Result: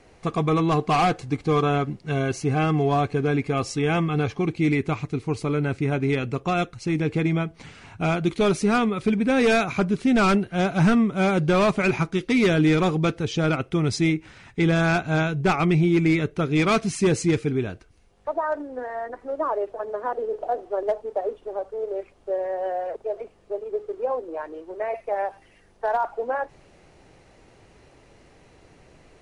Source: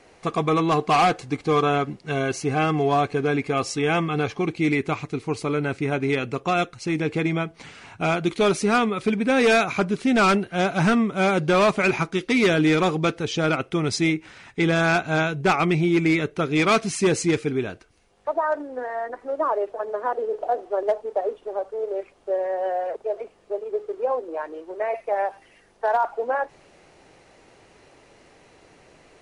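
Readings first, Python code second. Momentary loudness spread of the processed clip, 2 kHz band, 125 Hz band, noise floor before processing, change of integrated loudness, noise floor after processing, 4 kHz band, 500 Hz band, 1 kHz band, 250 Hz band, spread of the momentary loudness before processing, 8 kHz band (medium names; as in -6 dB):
11 LU, -3.0 dB, +3.5 dB, -55 dBFS, -0.5 dB, -55 dBFS, -3.0 dB, -1.5 dB, -2.5 dB, +1.0 dB, 11 LU, -3.0 dB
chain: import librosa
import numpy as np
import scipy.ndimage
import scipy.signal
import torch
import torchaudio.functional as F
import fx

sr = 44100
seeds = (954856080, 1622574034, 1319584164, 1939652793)

y = fx.low_shelf(x, sr, hz=180.0, db=11.5)
y = y * librosa.db_to_amplitude(-3.0)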